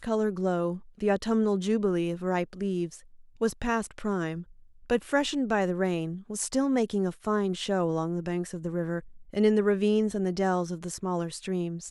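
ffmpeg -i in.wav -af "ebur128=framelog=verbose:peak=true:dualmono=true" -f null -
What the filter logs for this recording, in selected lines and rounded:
Integrated loudness:
  I:         -25.6 LUFS
  Threshold: -35.8 LUFS
Loudness range:
  LRA:         2.7 LU
  Threshold: -45.9 LUFS
  LRA low:   -27.5 LUFS
  LRA high:  -24.8 LUFS
True peak:
  Peak:      -11.6 dBFS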